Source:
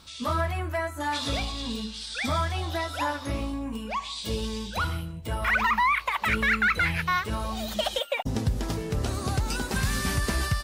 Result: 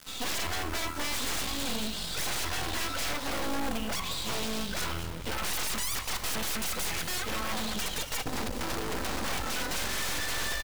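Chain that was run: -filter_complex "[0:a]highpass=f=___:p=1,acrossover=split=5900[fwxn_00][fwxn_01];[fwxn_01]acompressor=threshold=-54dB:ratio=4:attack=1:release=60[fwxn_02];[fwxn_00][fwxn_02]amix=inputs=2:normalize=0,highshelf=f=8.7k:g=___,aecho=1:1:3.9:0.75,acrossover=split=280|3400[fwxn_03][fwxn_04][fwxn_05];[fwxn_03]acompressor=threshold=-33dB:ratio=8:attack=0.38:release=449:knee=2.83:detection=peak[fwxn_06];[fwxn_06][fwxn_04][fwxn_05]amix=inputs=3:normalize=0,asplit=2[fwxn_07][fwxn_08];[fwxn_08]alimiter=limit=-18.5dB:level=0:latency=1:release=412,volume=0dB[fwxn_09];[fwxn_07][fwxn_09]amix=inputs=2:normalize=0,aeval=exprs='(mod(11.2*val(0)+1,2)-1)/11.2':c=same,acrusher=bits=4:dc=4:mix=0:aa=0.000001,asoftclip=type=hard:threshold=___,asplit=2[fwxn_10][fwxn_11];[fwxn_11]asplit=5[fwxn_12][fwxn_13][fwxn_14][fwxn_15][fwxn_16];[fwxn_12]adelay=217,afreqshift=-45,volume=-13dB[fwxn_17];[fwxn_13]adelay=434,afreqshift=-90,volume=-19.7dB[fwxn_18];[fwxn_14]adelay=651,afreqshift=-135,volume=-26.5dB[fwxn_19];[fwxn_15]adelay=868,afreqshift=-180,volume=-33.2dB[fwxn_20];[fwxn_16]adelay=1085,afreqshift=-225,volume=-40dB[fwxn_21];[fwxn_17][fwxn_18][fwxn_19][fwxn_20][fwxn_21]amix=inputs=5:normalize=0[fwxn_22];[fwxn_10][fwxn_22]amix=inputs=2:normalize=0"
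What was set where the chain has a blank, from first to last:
110, -8.5, -25.5dB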